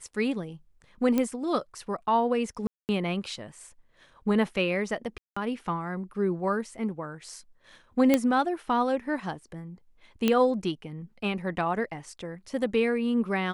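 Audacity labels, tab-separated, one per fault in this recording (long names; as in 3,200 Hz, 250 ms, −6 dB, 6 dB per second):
1.180000	1.180000	click −13 dBFS
2.670000	2.890000	drop-out 219 ms
5.180000	5.370000	drop-out 185 ms
8.140000	8.140000	click −8 dBFS
10.280000	10.280000	click −10 dBFS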